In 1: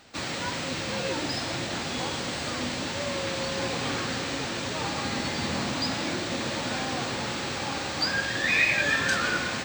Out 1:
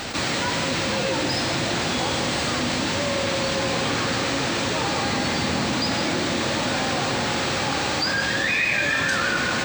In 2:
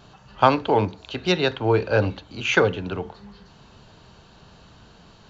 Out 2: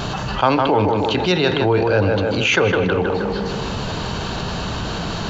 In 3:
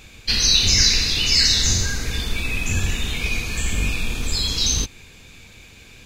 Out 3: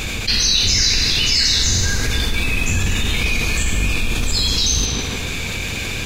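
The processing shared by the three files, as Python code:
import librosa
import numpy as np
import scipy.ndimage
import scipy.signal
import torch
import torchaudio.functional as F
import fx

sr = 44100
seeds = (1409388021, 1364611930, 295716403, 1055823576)

y = fx.echo_tape(x, sr, ms=156, feedback_pct=50, wet_db=-6.5, lp_hz=2500.0, drive_db=5.0, wow_cents=27)
y = fx.env_flatten(y, sr, amount_pct=70)
y = F.gain(torch.from_numpy(y), -1.5).numpy()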